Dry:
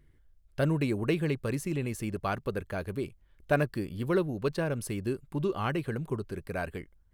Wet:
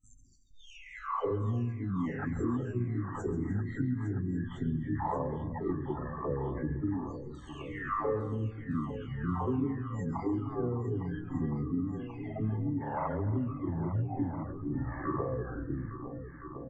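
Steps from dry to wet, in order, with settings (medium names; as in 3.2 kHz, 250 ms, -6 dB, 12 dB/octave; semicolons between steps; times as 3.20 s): delay that grows with frequency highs early, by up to 568 ms; recorder AGC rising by 9.5 dB/s; gate with hold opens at -44 dBFS; treble shelf 3.6 kHz -11 dB; reverb removal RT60 0.57 s; pitch shift +9.5 st; compression, threshold -33 dBFS, peak gain reduction 10 dB; spectral gate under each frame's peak -25 dB strong; multi-tap echo 58/129/366/583/830 ms -12.5/-16.5/-11.5/-11.5/-14.5 dB; on a send at -20 dB: reverberation RT60 0.50 s, pre-delay 55 ms; on the sum: speed mistake 78 rpm record played at 33 rpm; trim +3.5 dB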